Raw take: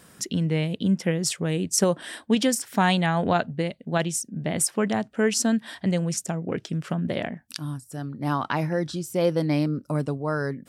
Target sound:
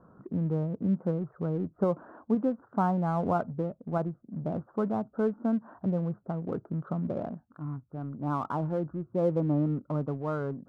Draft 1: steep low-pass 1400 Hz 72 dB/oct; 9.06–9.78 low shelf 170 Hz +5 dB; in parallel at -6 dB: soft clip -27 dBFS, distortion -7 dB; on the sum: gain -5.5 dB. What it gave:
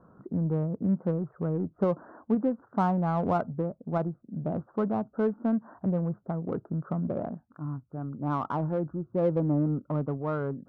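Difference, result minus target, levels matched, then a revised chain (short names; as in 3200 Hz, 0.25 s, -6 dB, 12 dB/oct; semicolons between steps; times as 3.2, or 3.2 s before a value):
soft clip: distortion -5 dB
steep low-pass 1400 Hz 72 dB/oct; 9.06–9.78 low shelf 170 Hz +5 dB; in parallel at -6 dB: soft clip -38 dBFS, distortion -3 dB; on the sum: gain -5.5 dB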